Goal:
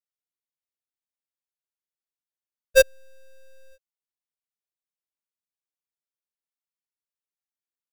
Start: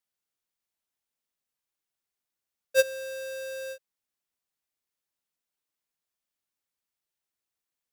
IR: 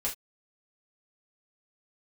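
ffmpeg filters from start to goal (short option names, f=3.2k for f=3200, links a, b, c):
-af "aeval=exprs='0.178*(cos(1*acos(clip(val(0)/0.178,-1,1)))-cos(1*PI/2))+0.0282*(cos(7*acos(clip(val(0)/0.178,-1,1)))-cos(7*PI/2))+0.0112*(cos(8*acos(clip(val(0)/0.178,-1,1)))-cos(8*PI/2))':c=same,volume=6.5dB"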